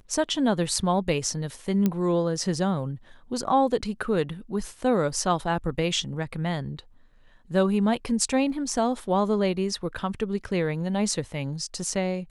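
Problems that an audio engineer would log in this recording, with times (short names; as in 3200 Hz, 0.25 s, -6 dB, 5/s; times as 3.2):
1.86 pop -11 dBFS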